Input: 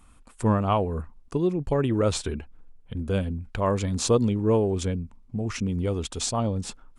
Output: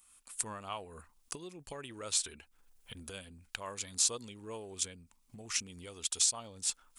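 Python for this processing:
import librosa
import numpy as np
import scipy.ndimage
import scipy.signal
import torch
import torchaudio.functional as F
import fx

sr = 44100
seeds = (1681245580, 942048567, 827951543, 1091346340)

y = fx.recorder_agc(x, sr, target_db=-16.5, rise_db_per_s=27.0, max_gain_db=30)
y = scipy.signal.lfilter([1.0, -0.97], [1.0], y)
y = F.gain(torch.from_numpy(y), 1.0).numpy()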